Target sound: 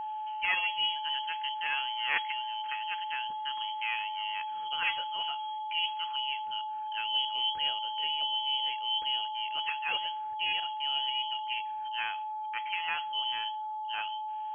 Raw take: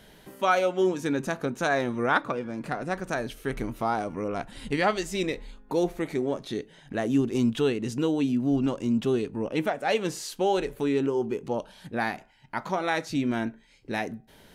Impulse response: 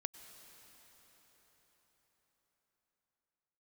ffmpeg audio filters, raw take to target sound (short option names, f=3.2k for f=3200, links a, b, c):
-af "aeval=exprs='0.299*(cos(1*acos(clip(val(0)/0.299,-1,1)))-cos(1*PI/2))+0.119*(cos(2*acos(clip(val(0)/0.299,-1,1)))-cos(2*PI/2))':c=same,lowpass=f=2.8k:t=q:w=0.5098,lowpass=f=2.8k:t=q:w=0.6013,lowpass=f=2.8k:t=q:w=0.9,lowpass=f=2.8k:t=q:w=2.563,afreqshift=-3300,aeval=exprs='val(0)+0.0501*sin(2*PI*860*n/s)':c=same,volume=-8dB"